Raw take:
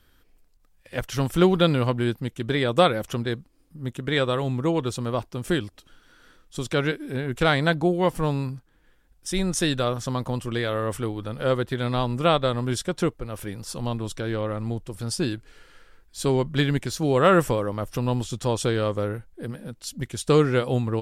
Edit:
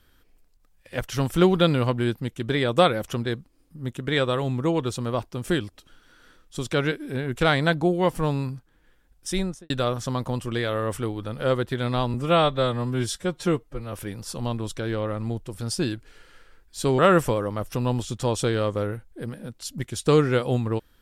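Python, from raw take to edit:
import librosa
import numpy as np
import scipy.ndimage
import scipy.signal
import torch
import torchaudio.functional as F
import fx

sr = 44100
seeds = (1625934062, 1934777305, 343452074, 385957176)

y = fx.studio_fade_out(x, sr, start_s=9.33, length_s=0.37)
y = fx.edit(y, sr, fx.stretch_span(start_s=12.14, length_s=1.19, factor=1.5),
    fx.cut(start_s=16.39, length_s=0.81), tone=tone)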